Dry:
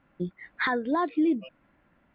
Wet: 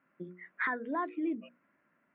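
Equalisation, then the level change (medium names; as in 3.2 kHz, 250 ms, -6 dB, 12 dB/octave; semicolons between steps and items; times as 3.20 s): cabinet simulation 260–2400 Hz, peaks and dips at 320 Hz -4 dB, 510 Hz -5 dB, 810 Hz -10 dB; hum notches 60/120/180/240/300/360/420/480/540 Hz; -3.5 dB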